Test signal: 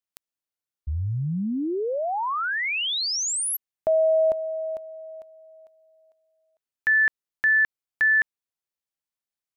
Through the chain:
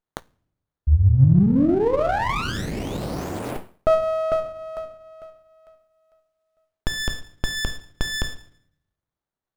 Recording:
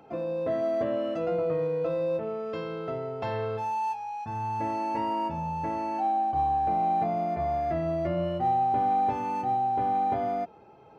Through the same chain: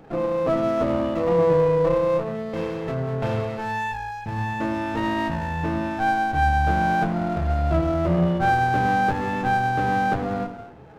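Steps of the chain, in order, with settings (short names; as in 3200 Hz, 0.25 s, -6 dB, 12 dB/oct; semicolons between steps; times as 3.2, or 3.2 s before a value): low shelf 260 Hz +7.5 dB; shoebox room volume 130 m³, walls mixed, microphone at 0.54 m; running maximum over 17 samples; gain +4 dB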